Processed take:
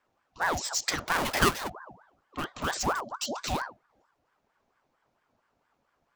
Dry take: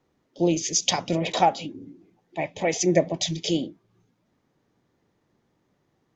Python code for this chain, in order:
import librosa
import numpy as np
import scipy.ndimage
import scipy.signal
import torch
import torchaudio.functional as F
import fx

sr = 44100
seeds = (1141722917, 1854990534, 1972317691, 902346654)

p1 = fx.halfwave_hold(x, sr, at=(1.07, 1.68), fade=0.02)
p2 = fx.spec_box(p1, sr, start_s=2.96, length_s=0.4, low_hz=310.0, high_hz=3500.0, gain_db=-25)
p3 = (np.mod(10.0 ** (21.5 / 20.0) * p2 + 1.0, 2.0) - 1.0) / 10.0 ** (21.5 / 20.0)
p4 = p2 + F.gain(torch.from_numpy(p3), -9.0).numpy()
p5 = fx.ring_lfo(p4, sr, carrier_hz=870.0, swing_pct=55, hz=4.4)
y = F.gain(torch.from_numpy(p5), -4.0).numpy()